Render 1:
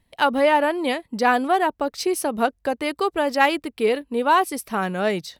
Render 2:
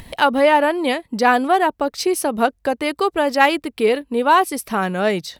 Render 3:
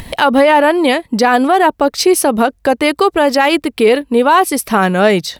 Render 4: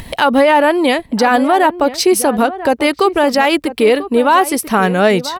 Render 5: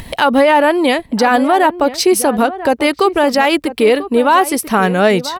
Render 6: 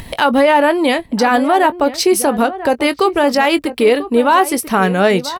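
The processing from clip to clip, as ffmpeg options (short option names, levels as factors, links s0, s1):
-af "acompressor=mode=upward:threshold=0.0562:ratio=2.5,volume=1.5"
-af "alimiter=level_in=3.16:limit=0.891:release=50:level=0:latency=1,volume=0.891"
-filter_complex "[0:a]asplit=2[s0][s1];[s1]adelay=991.3,volume=0.224,highshelf=f=4000:g=-22.3[s2];[s0][s2]amix=inputs=2:normalize=0,volume=0.891"
-af anull
-filter_complex "[0:a]asplit=2[s0][s1];[s1]adelay=21,volume=0.2[s2];[s0][s2]amix=inputs=2:normalize=0,volume=0.891"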